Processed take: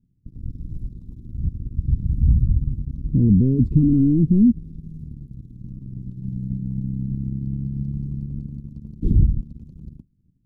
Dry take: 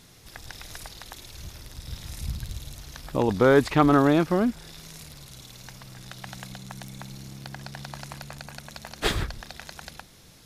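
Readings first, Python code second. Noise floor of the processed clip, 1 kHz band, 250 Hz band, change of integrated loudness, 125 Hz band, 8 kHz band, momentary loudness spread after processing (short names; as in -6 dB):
-63 dBFS, under -40 dB, +6.5 dB, +2.0 dB, +12.5 dB, under -30 dB, 21 LU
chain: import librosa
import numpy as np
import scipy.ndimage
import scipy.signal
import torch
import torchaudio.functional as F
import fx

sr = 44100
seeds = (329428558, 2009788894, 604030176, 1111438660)

y = fx.leveller(x, sr, passes=5)
y = scipy.signal.sosfilt(scipy.signal.cheby2(4, 50, 640.0, 'lowpass', fs=sr, output='sos'), y)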